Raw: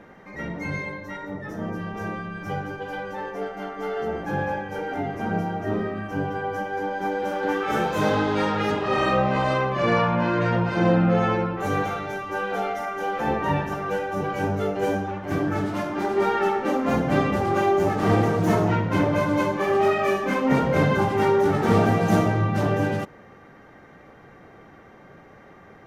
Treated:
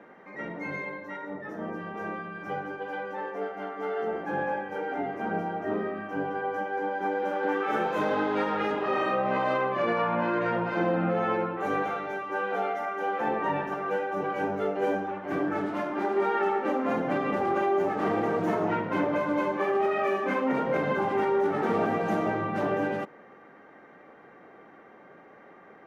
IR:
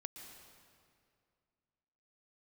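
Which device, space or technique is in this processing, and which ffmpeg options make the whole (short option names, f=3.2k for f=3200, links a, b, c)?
DJ mixer with the lows and highs turned down: -filter_complex "[0:a]acrossover=split=200 2900:gain=0.0891 1 0.251[a][b][c];[a][b][c]amix=inputs=3:normalize=0,alimiter=limit=-15.5dB:level=0:latency=1:release=96,volume=-2dB"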